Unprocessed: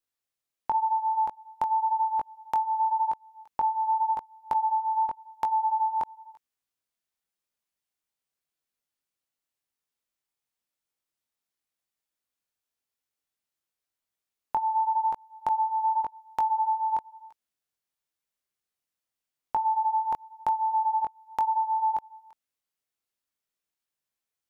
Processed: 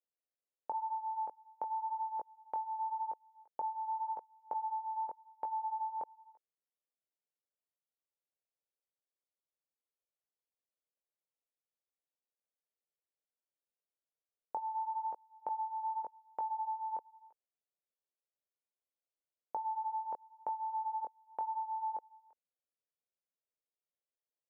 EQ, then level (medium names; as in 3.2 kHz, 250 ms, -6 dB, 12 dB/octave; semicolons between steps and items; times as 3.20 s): band-pass filter 520 Hz, Q 2.5; distance through air 230 m; -1.5 dB